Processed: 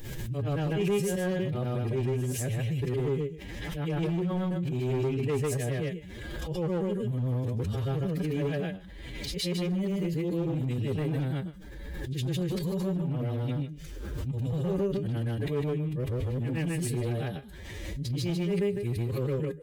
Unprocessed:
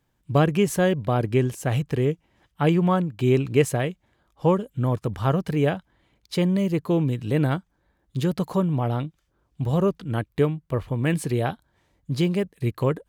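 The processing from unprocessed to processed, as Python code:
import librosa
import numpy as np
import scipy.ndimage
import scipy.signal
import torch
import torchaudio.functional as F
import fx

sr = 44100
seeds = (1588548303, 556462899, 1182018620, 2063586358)

p1 = fx.frame_reverse(x, sr, frame_ms=207.0)
p2 = fx.low_shelf(p1, sr, hz=62.0, db=9.5)
p3 = fx.over_compress(p2, sr, threshold_db=-32.0, ratio=-1.0)
p4 = p2 + (p3 * 10.0 ** (1.0 / 20.0))
p5 = fx.band_shelf(p4, sr, hz=1000.0, db=-10.0, octaves=1.3)
p6 = np.clip(10.0 ** (18.0 / 20.0) * p5, -1.0, 1.0) / 10.0 ** (18.0 / 20.0)
p7 = fx.stretch_vocoder(p6, sr, factor=1.5)
p8 = fx.comb_fb(p7, sr, f0_hz=410.0, decay_s=0.19, harmonics='all', damping=0.0, mix_pct=60)
y = fx.pre_swell(p8, sr, db_per_s=27.0)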